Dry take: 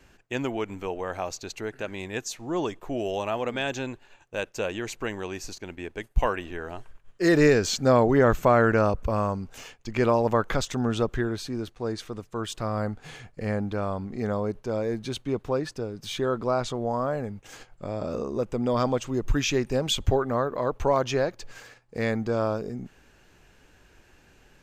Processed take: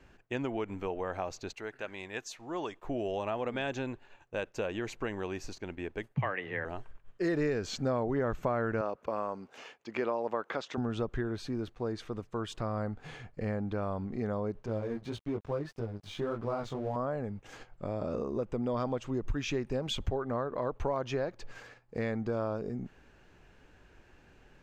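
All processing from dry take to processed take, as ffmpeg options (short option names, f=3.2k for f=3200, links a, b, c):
-filter_complex "[0:a]asettb=1/sr,asplit=3[a][b][c];[a]atrim=end=1.534[d];[b]atrim=start=1.53:end=2.85,asetpts=PTS-STARTPTS,afade=t=in:d=0.004:c=qsin,afade=t=out:st=1.316:d=0.004:c=qsin,agate=range=-33dB:threshold=-50dB:ratio=3:release=100:detection=peak,lowshelf=f=470:g=-11.5[e];[c]atrim=start=2.846[f];[d][e]acrossfade=d=0.004:c1=hsin:c2=qsin[g];[g][f]acrossfade=d=0.004:c1=qsin:c2=hsin,asettb=1/sr,asplit=3[h][i][j];[h]atrim=end=6.154[k];[i]atrim=start=6.15:end=6.65,asetpts=PTS-STARTPTS,afade=t=in:d=0.004:c=qsin,afade=t=out:st=0.496:d=0.004:c=qsin,afreqshift=92,highpass=100,lowpass=4.1k,equalizer=f=2k:w=2.5:g=13.5[l];[j]atrim=start=6.646[m];[k][l]acrossfade=d=0.004:c1=hsin:c2=qsin[n];[n][m]acrossfade=d=0.004:c1=qsin:c2=hsin,asettb=1/sr,asplit=3[o][p][q];[o]atrim=end=8.814[r];[p]atrim=start=8.81:end=10.78,asetpts=PTS-STARTPTS,afade=t=in:d=0.004:c=qsin,afade=t=out:st=1.966:d=0.004:c=qsin,highpass=320,acrossover=split=6100[s][t];[t]acompressor=threshold=-60dB:ratio=4:attack=1:release=60[u];[s][u]amix=inputs=2:normalize=0[v];[q]atrim=start=10.776[w];[r][v]acrossfade=d=0.004:c1=hsin:c2=qsin[x];[x][w]acrossfade=d=0.004:c1=qsin:c2=hsin,asettb=1/sr,asplit=3[y][z][aa];[y]atrim=end=14.664[ab];[z]atrim=start=14.66:end=16.96,asetpts=PTS-STARTPTS,afade=t=in:d=0.004:c=qsin,afade=t=out:st=2.296:d=0.004:c=qsin,equalizer=f=87:t=o:w=1.4:g=6,flanger=delay=17.5:depth=3.9:speed=1.7,aeval=exprs='sgn(val(0))*max(abs(val(0))-0.00473,0)':c=same[ac];[aa]atrim=start=16.956[ad];[ab][ac]acrossfade=d=0.004:c1=hsin:c2=qsin[ae];[ae][ad]acrossfade=d=0.004:c1=qsin:c2=hsin,lowpass=f=2.4k:p=1,acompressor=threshold=-29dB:ratio=3,volume=-1.5dB"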